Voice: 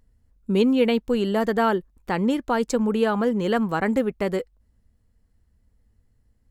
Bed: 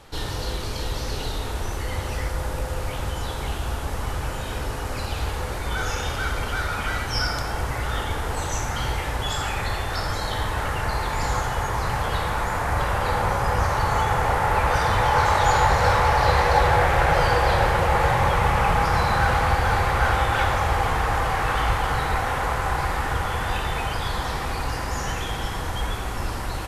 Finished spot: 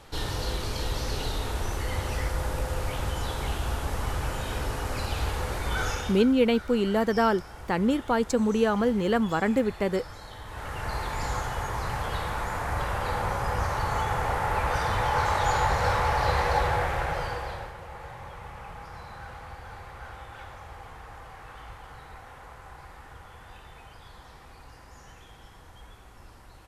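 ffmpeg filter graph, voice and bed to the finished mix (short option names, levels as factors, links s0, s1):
-filter_complex "[0:a]adelay=5600,volume=0.794[s0];[1:a]volume=2.66,afade=t=out:st=5.85:d=0.42:silence=0.188365,afade=t=in:st=10.44:d=0.51:silence=0.298538,afade=t=out:st=16.51:d=1.23:silence=0.158489[s1];[s0][s1]amix=inputs=2:normalize=0"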